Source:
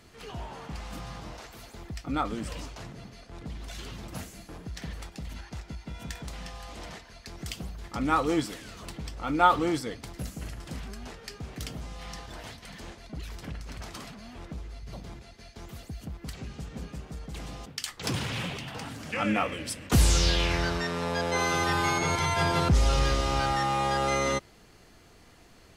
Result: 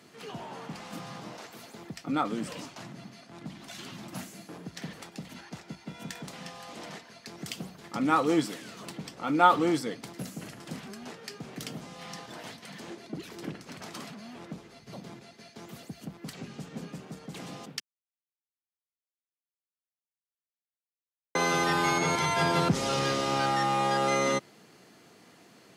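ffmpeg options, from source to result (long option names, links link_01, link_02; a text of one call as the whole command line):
ffmpeg -i in.wav -filter_complex "[0:a]asettb=1/sr,asplit=3[link_01][link_02][link_03];[link_01]atrim=end=2.654[link_04];[link_02]atrim=start=2.65:end=4.31,asetpts=PTS-STARTPTS,afade=type=in:duration=0.004:curve=qsin,afade=type=out:start_time=1.656:duration=0.004:curve=qsin,equalizer=frequency=460:width=4.4:gain=-10[link_05];[link_03]atrim=start=4.306[link_06];[link_04][link_05]acrossfade=duration=0.004:curve1=hsin:curve2=qsin[link_07];[link_07][link_06]acrossfade=duration=0.004:curve1=qsin:curve2=hsin,asettb=1/sr,asplit=3[link_08][link_09][link_10];[link_08]atrim=end=12.904[link_11];[link_09]atrim=start=12.9:end=13.65,asetpts=PTS-STARTPTS,afade=type=in:duration=0.004:curve=qsin,afade=type=out:start_time=0.746:duration=0.004:curve=qsin,equalizer=frequency=350:width=2.6:gain=9.5[link_12];[link_10]atrim=start=13.646[link_13];[link_11][link_12]acrossfade=duration=0.004:curve1=hsin:curve2=qsin[link_14];[link_14][link_13]acrossfade=duration=0.004:curve1=qsin:curve2=hsin,asplit=3[link_15][link_16][link_17];[link_15]atrim=end=17.8,asetpts=PTS-STARTPTS,afade=type=out:start_time=17.796:duration=0.004:curve=hsin[link_18];[link_16]atrim=start=17.8:end=21.35,asetpts=PTS-STARTPTS,volume=0[link_19];[link_17]atrim=start=21.35,asetpts=PTS-STARTPTS,afade=type=in:duration=0.004:curve=hsin[link_20];[link_18][link_19][link_20]concat=n=3:v=0:a=1,highpass=frequency=150:width=0.5412,highpass=frequency=150:width=1.3066,lowshelf=frequency=380:gain=3" out.wav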